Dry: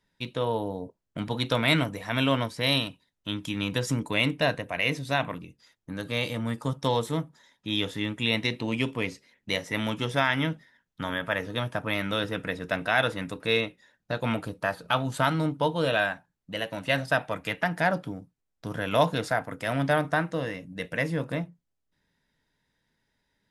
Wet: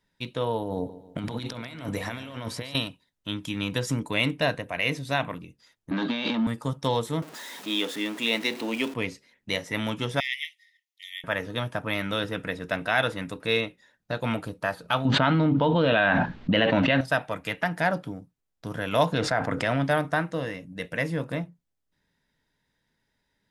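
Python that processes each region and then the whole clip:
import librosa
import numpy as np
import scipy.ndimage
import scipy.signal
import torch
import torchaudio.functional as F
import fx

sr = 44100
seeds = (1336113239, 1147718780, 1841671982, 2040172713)

y = fx.chain(x, sr, fx.over_compress(threshold_db=-35.0, ratio=-1.0),
    fx.echo_feedback(ms=143, feedback_pct=46, wet_db=-15.0), at=(0.62, 2.75))
y = fx.chain(y, sr, fx.over_compress(threshold_db=-36.0, ratio=-1.0),
    fx.leveller(passes=3),
    fx.cabinet(low_hz=210.0, low_slope=24, high_hz=4300.0, hz=(230.0, 490.0, 950.0, 2100.0, 3700.0), db=(9, -9, 4, -3, 4)), at=(5.91, 6.47))
y = fx.chain(y, sr, fx.zero_step(step_db=-35.0),
    fx.highpass(hz=230.0, slope=24), at=(7.22, 8.94))
y = fx.chain(y, sr, fx.brickwall_highpass(low_hz=1800.0),
    fx.notch(hz=7900.0, q=15.0), at=(10.2, 11.24))
y = fx.chain(y, sr, fx.lowpass(hz=3700.0, slope=24),
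    fx.peak_eq(hz=240.0, db=7.0, octaves=0.51),
    fx.env_flatten(amount_pct=100), at=(15.05, 17.01))
y = fx.chain(y, sr, fx.air_absorb(metres=78.0),
    fx.env_flatten(amount_pct=70), at=(19.12, 19.84))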